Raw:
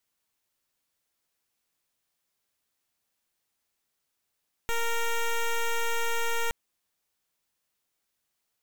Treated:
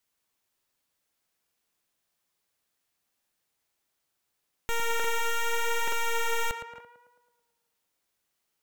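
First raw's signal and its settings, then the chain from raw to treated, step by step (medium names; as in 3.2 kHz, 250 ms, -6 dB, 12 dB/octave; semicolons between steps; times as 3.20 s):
pulse 464 Hz, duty 10% -26.5 dBFS 1.82 s
on a send: tape echo 111 ms, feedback 62%, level -3.5 dB, low-pass 2.3 kHz; on the sum: crackling interface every 0.88 s, samples 2048, repeat, from 0.55 s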